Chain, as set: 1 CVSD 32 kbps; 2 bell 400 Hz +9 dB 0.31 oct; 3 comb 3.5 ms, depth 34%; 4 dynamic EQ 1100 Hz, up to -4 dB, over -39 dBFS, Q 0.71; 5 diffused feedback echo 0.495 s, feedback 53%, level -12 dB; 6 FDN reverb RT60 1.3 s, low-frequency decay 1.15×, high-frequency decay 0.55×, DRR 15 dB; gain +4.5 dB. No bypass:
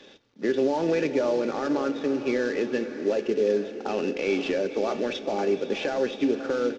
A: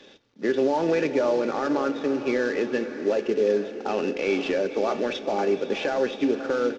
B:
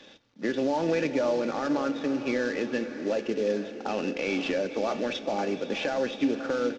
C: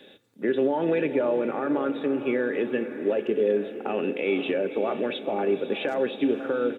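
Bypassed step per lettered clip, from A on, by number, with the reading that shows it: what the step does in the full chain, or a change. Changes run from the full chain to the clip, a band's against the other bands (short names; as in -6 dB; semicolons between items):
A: 4, 1 kHz band +2.5 dB; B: 2, 500 Hz band -3.5 dB; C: 1, 4 kHz band -2.0 dB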